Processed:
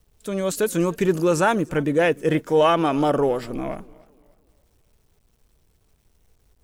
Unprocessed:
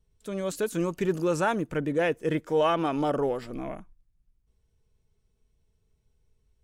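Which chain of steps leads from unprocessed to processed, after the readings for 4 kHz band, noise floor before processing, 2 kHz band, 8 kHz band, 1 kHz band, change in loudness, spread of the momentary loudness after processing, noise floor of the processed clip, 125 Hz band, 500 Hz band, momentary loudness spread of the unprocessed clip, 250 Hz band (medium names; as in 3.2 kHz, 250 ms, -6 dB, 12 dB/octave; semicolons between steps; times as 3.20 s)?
+7.0 dB, -73 dBFS, +6.5 dB, no reading, +6.5 dB, +6.5 dB, 12 LU, -64 dBFS, +6.5 dB, +6.5 dB, 12 LU, +6.5 dB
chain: treble shelf 8.8 kHz +6 dB; word length cut 12-bit, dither none; modulated delay 297 ms, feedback 37%, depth 115 cents, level -23.5 dB; trim +6.5 dB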